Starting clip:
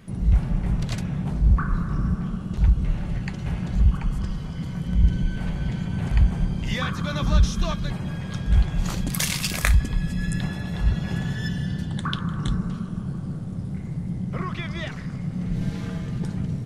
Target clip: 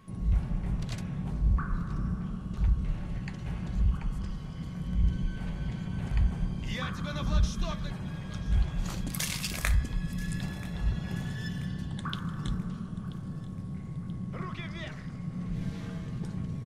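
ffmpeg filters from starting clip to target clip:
-af "bandreject=f=68.69:t=h:w=4,bandreject=f=137.38:t=h:w=4,bandreject=f=206.07:t=h:w=4,bandreject=f=274.76:t=h:w=4,bandreject=f=343.45:t=h:w=4,bandreject=f=412.14:t=h:w=4,bandreject=f=480.83:t=h:w=4,bandreject=f=549.52:t=h:w=4,bandreject=f=618.21:t=h:w=4,bandreject=f=686.9:t=h:w=4,bandreject=f=755.59:t=h:w=4,bandreject=f=824.28:t=h:w=4,bandreject=f=892.97:t=h:w=4,bandreject=f=961.66:t=h:w=4,bandreject=f=1.03035k:t=h:w=4,bandreject=f=1.09904k:t=h:w=4,bandreject=f=1.16773k:t=h:w=4,bandreject=f=1.23642k:t=h:w=4,bandreject=f=1.30511k:t=h:w=4,bandreject=f=1.3738k:t=h:w=4,bandreject=f=1.44249k:t=h:w=4,bandreject=f=1.51118k:t=h:w=4,bandreject=f=1.57987k:t=h:w=4,bandreject=f=1.64856k:t=h:w=4,bandreject=f=1.71725k:t=h:w=4,bandreject=f=1.78594k:t=h:w=4,bandreject=f=1.85463k:t=h:w=4,bandreject=f=1.92332k:t=h:w=4,bandreject=f=1.99201k:t=h:w=4,bandreject=f=2.0607k:t=h:w=4,bandreject=f=2.12939k:t=h:w=4,aeval=exprs='val(0)+0.00224*sin(2*PI*1100*n/s)':c=same,aecho=1:1:983|1966|2949|3932:0.119|0.057|0.0274|0.0131,volume=-7.5dB"

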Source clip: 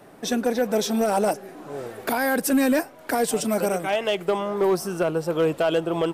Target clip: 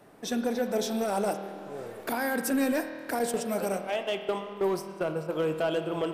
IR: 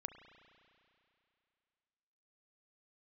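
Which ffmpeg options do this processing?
-filter_complex "[0:a]asettb=1/sr,asplit=3[a][b][c];[a]atrim=end=3.194[d];[b]atrim=start=3.19:end=5.31,asetpts=PTS-STARTPTS,afade=t=in:d=0.004:c=qsin,afade=t=out:st=2.116:d=0.004:c=qsin,agate=range=-13dB:threshold=-25dB:ratio=16:detection=peak[e];[c]atrim=start=5.306[f];[d][e]acrossfade=d=0.004:c1=hsin:c2=qsin[g];[g][f]acrossfade=d=0.004:c1=qsin:c2=hsin[h];[1:a]atrim=start_sample=2205,asetrate=57330,aresample=44100[i];[h][i]afir=irnorm=-1:irlink=0"

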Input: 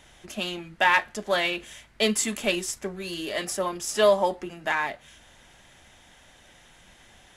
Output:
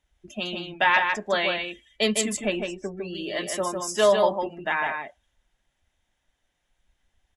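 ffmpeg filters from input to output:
-filter_complex "[0:a]asettb=1/sr,asplit=3[a][b][c];[a]atrim=end=2.214[d];[b]atrim=start=2.21:end=3.15,asetpts=PTS-STARTPTS,afade=t=in:d=0.004:c=qsin,afade=t=out:st=0.936:d=0.004:c=qsin,aemphasis=mode=reproduction:type=75kf[e];[c]atrim=start=3.146[f];[d][e]acrossfade=d=0.004:c1=hsin:c2=qsin[g];[g][f]acrossfade=d=0.004:c1=qsin:c2=hsin,afftdn=nr=24:nf=-39,asplit=2[h][i];[i]aecho=0:1:154:0.562[j];[h][j]amix=inputs=2:normalize=0"

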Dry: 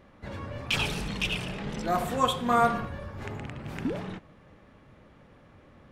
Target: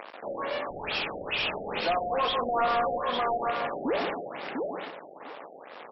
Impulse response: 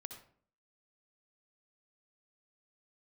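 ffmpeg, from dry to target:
-filter_complex "[0:a]aecho=1:1:153|306|459|612:0.335|0.134|0.0536|0.0214,alimiter=limit=-20dB:level=0:latency=1:release=111,equalizer=f=1.3k:t=o:w=2.4:g=-13,asplit=2[a][b];[b]adelay=700,lowpass=f=4k:p=1,volume=-5dB,asplit=2[c][d];[d]adelay=700,lowpass=f=4k:p=1,volume=0.18,asplit=2[e][f];[f]adelay=700,lowpass=f=4k:p=1,volume=0.18[g];[a][c][e][g]amix=inputs=4:normalize=0,aeval=exprs='sgn(val(0))*max(abs(val(0))-0.0015,0)':c=same,acompressor=mode=upward:threshold=-48dB:ratio=2.5,highpass=610,highshelf=f=8.4k:g=9,asplit=2[h][i];[i]highpass=f=720:p=1,volume=26dB,asoftclip=type=tanh:threshold=-22.5dB[j];[h][j]amix=inputs=2:normalize=0,lowpass=f=1.9k:p=1,volume=-6dB,afftfilt=real='re*lt(b*sr/1024,770*pow(5700/770,0.5+0.5*sin(2*PI*2.3*pts/sr)))':imag='im*lt(b*sr/1024,770*pow(5700/770,0.5+0.5*sin(2*PI*2.3*pts/sr)))':win_size=1024:overlap=0.75,volume=6.5dB"

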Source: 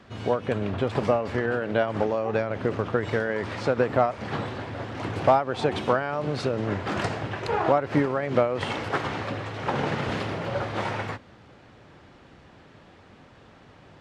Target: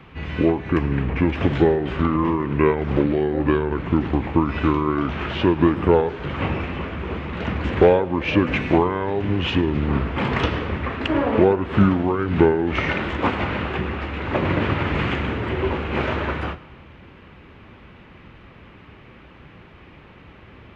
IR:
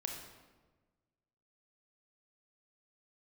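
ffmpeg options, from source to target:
-filter_complex "[0:a]equalizer=f=1k:t=o:w=1:g=-5,equalizer=f=4k:t=o:w=1:g=8,equalizer=f=8k:t=o:w=1:g=-7,asetrate=29768,aresample=44100,asplit=2[a][b];[1:a]atrim=start_sample=2205,adelay=106[c];[b][c]afir=irnorm=-1:irlink=0,volume=-18dB[d];[a][d]amix=inputs=2:normalize=0,volume=6.5dB"

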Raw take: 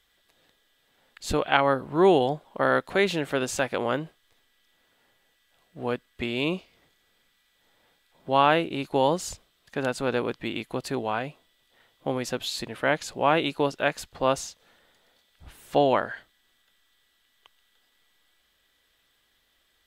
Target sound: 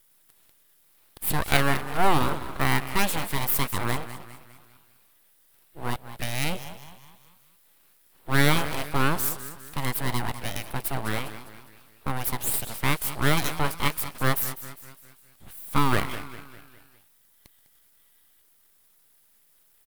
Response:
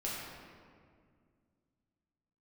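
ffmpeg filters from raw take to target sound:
-filter_complex "[0:a]asplit=6[a][b][c][d][e][f];[b]adelay=202,afreqshift=46,volume=-13dB[g];[c]adelay=404,afreqshift=92,volume=-19.6dB[h];[d]adelay=606,afreqshift=138,volume=-26.1dB[i];[e]adelay=808,afreqshift=184,volume=-32.7dB[j];[f]adelay=1010,afreqshift=230,volume=-39.2dB[k];[a][g][h][i][j][k]amix=inputs=6:normalize=0,aeval=exprs='abs(val(0))':c=same,aexciter=amount=4.4:drive=6.4:freq=8.8k,volume=1.5dB"

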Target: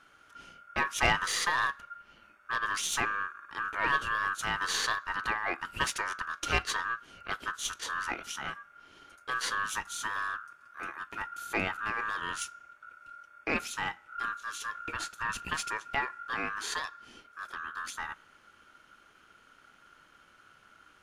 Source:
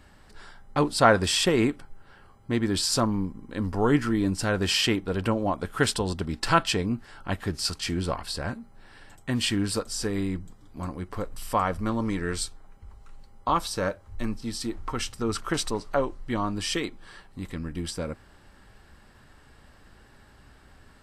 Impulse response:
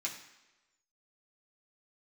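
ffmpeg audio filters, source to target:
-filter_complex "[0:a]aeval=exprs='val(0)*sin(2*PI*1400*n/s)':c=same,aeval=exprs='(tanh(4.47*val(0)+0.35)-tanh(0.35))/4.47':c=same,asplit=2[a][b];[1:a]atrim=start_sample=2205,adelay=22[c];[b][c]afir=irnorm=-1:irlink=0,volume=-23.5dB[d];[a][d]amix=inputs=2:normalize=0,volume=-2.5dB"

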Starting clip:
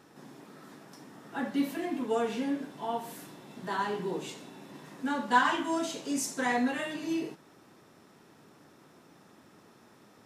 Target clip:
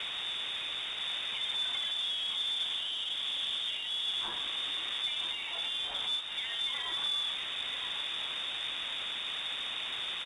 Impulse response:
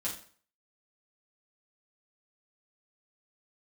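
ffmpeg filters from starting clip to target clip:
-filter_complex "[0:a]aeval=exprs='val(0)+0.5*0.0335*sgn(val(0))':c=same,asplit=3[a][b][c];[a]afade=t=out:st=1.91:d=0.02[d];[b]equalizer=f=520:w=0.63:g=13,afade=t=in:st=1.91:d=0.02,afade=t=out:st=4.04:d=0.02[e];[c]afade=t=in:st=4.04:d=0.02[f];[d][e][f]amix=inputs=3:normalize=0,acompressor=threshold=-22dB:ratio=12,alimiter=level_in=3dB:limit=-24dB:level=0:latency=1:release=41,volume=-3dB,acrossover=split=490|3000[g][h][i];[h]acompressor=threshold=-39dB:ratio=5[j];[g][j][i]amix=inputs=3:normalize=0,aeval=exprs='val(0)+0.00631*(sin(2*PI*50*n/s)+sin(2*PI*2*50*n/s)/2+sin(2*PI*3*50*n/s)/3+sin(2*PI*4*50*n/s)/4+sin(2*PI*5*50*n/s)/5)':c=same,acrusher=bits=6:mix=0:aa=0.000001,aecho=1:1:967:0.398,lowpass=f=3.2k:t=q:w=0.5098,lowpass=f=3.2k:t=q:w=0.6013,lowpass=f=3.2k:t=q:w=0.9,lowpass=f=3.2k:t=q:w=2.563,afreqshift=-3800,volume=-1.5dB" -ar 22050 -c:a adpcm_ima_wav

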